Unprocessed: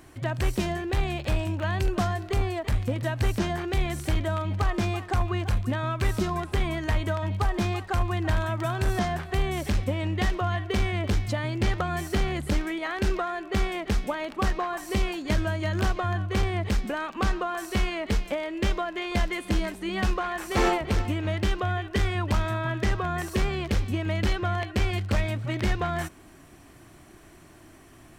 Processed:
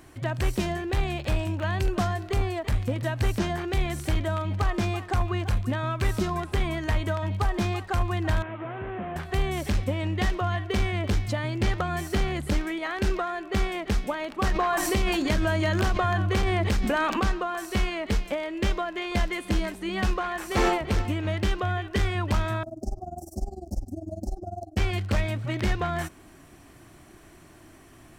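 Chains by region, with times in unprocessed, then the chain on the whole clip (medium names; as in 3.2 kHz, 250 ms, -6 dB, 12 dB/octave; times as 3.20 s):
8.42–9.16 s: one-bit delta coder 16 kbps, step -43 dBFS + high-pass 360 Hz 6 dB/octave
14.43–17.20 s: hum notches 50/100/150/200/250/300/350/400 Hz + level flattener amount 70%
22.63–24.77 s: Chebyshev band-stop 760–5300 Hz, order 3 + AM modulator 20 Hz, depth 85% + static phaser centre 680 Hz, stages 8
whole clip: none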